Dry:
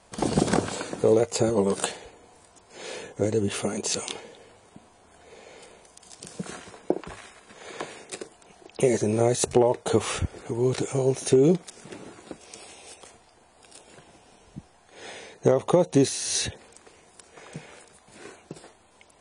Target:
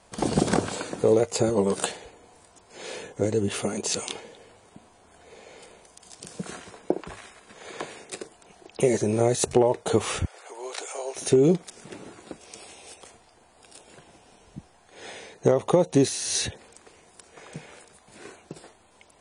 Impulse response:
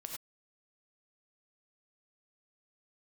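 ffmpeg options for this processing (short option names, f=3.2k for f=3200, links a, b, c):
-filter_complex "[0:a]asplit=3[a][b][c];[a]afade=t=out:st=10.25:d=0.02[d];[b]highpass=f=580:w=0.5412,highpass=f=580:w=1.3066,afade=t=in:st=10.25:d=0.02,afade=t=out:st=11.15:d=0.02[e];[c]afade=t=in:st=11.15:d=0.02[f];[d][e][f]amix=inputs=3:normalize=0"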